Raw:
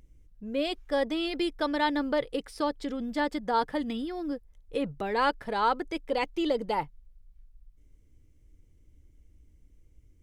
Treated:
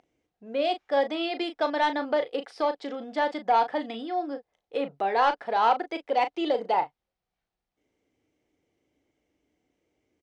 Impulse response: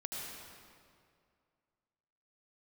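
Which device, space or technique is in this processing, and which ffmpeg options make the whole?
intercom: -filter_complex "[0:a]highpass=360,lowpass=4.5k,equalizer=f=730:t=o:w=0.35:g=11,asoftclip=type=tanh:threshold=-15.5dB,asplit=2[a][b];[b]adelay=36,volume=-9.5dB[c];[a][c]amix=inputs=2:normalize=0,volume=2dB"

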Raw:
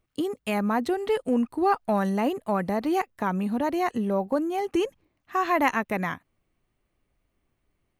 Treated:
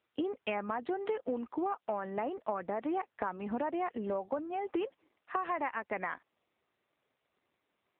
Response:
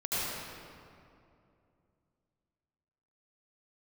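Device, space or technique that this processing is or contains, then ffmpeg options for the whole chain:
voicemail: -af "highpass=380,lowpass=2.8k,acompressor=threshold=-33dB:ratio=10,volume=3dB" -ar 8000 -c:a libopencore_amrnb -b:a 7950

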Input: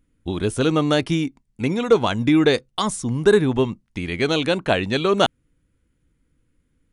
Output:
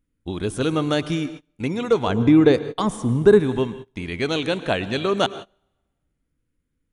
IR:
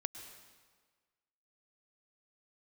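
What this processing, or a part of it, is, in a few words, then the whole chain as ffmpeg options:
keyed gated reverb: -filter_complex "[0:a]asplit=3[a][b][c];[1:a]atrim=start_sample=2205[d];[b][d]afir=irnorm=-1:irlink=0[e];[c]apad=whole_len=305573[f];[e][f]sidechaingate=range=-27dB:threshold=-37dB:ratio=16:detection=peak,volume=1.5dB[g];[a][g]amix=inputs=2:normalize=0,asettb=1/sr,asplit=3[h][i][j];[h]atrim=end=2.074[k];[i]atrim=start=2.07:end=3.4,asetpts=PTS-STARTPTS,afade=t=in:d=0.004:c=qsin,afade=t=out:st=1.326:d=0.004:c=qsin,tiltshelf=f=1.4k:g=6[l];[j]atrim=start=3.396[m];[k][l]acrossfade=d=0.004:c1=hsin:c2=qsin[n];[n][m]acrossfade=d=0.004:c1=qsin:c2=hsin,volume=-9dB"

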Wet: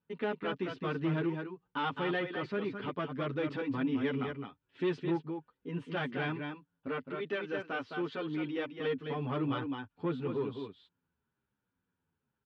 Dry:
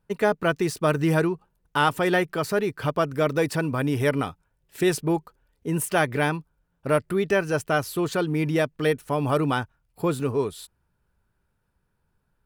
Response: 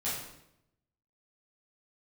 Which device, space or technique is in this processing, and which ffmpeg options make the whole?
barber-pole flanger into a guitar amplifier: -filter_complex "[0:a]asettb=1/sr,asplit=3[a][b][c];[a]atrim=end=6.874[d];[b]atrim=start=6.87:end=8.7,asetpts=PTS-STARTPTS,afade=t=in:d=0.004:c=qsin,afade=t=out:st=1.826:d=0.004:c=qsin,highpass=f=290:p=1[e];[c]atrim=start=8.696[f];[d][e]acrossfade=d=0.004:c1=hsin:c2=qsin[g];[g][f]acrossfade=d=0.004:c1=qsin:c2=hsin,aecho=1:1:212:0.447,asplit=2[h][i];[i]adelay=8.8,afreqshift=-1[j];[h][j]amix=inputs=2:normalize=1,asoftclip=type=tanh:threshold=-18.5dB,highpass=110,equalizer=f=260:t=q:w=4:g=8,equalizer=f=640:t=q:w=4:g=-6,equalizer=f=3.3k:t=q:w=4:g=5,lowpass=f=3.5k:w=0.5412,lowpass=f=3.5k:w=1.3066,volume=-7dB"

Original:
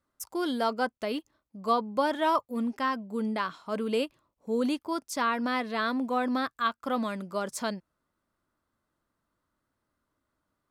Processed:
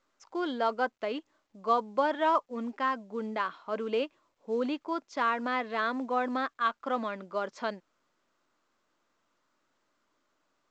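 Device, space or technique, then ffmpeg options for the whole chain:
telephone: -af "highpass=310,lowpass=3k" -ar 16000 -c:a pcm_mulaw

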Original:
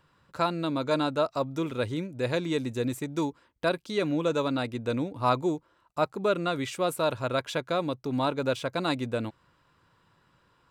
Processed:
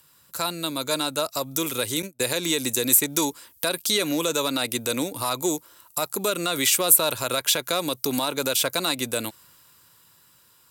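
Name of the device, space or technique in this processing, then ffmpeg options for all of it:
FM broadcast chain: -filter_complex "[0:a]asettb=1/sr,asplit=3[a][b][c];[a]atrim=end=2.024[d];[b]atrim=start=2.02:end=2.83,asetpts=PTS-STARTPTS,afade=t=in:d=0.004:c=qsin,afade=t=out:st=0.806:d=0.004:c=qsin,agate=range=-30dB:threshold=-36dB:ratio=16:detection=peak[e];[c]atrim=start=2.826[f];[d][e]acrossfade=d=0.004:c1=hsin:c2=qsin[g];[g][f]acrossfade=d=0.004:c1=qsin:c2=hsin,highpass=50,dynaudnorm=f=290:g=13:m=9.5dB,acrossover=split=260|4200[h][i][j];[h]acompressor=threshold=-37dB:ratio=4[k];[i]acompressor=threshold=-18dB:ratio=4[l];[j]acompressor=threshold=-44dB:ratio=4[m];[k][l][m]amix=inputs=3:normalize=0,aemphasis=mode=production:type=75fm,alimiter=limit=-15dB:level=0:latency=1:release=83,asoftclip=type=hard:threshold=-16.5dB,lowpass=f=15k:w=0.5412,lowpass=f=15k:w=1.3066,aemphasis=mode=production:type=75fm"

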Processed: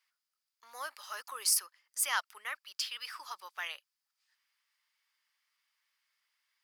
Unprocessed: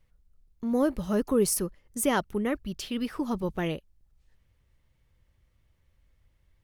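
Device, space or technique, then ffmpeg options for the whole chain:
headphones lying on a table: -af "highpass=f=1.1k:w=0.5412,highpass=f=1.1k:w=1.3066,equalizer=f=4.9k:t=o:w=0.21:g=10.5"

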